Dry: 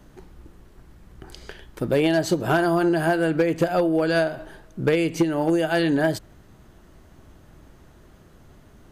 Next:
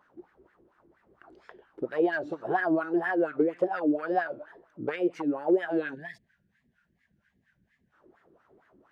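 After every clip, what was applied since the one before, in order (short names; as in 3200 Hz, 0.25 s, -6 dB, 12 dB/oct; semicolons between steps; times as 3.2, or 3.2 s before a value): wah 4.3 Hz 330–1700 Hz, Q 3.7; spectral gain 5.94–7.93, 250–1500 Hz -21 dB; wow and flutter 150 cents; gain +1.5 dB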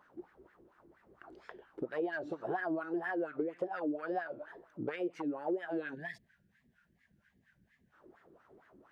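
compressor 2.5:1, threshold -37 dBFS, peak gain reduction 12.5 dB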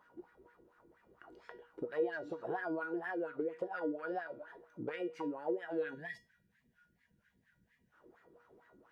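resonator 480 Hz, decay 0.27 s, harmonics all, mix 80%; gain +9.5 dB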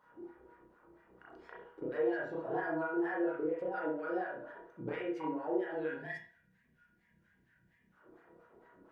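reverb, pre-delay 32 ms, DRR -4.5 dB; gain -3.5 dB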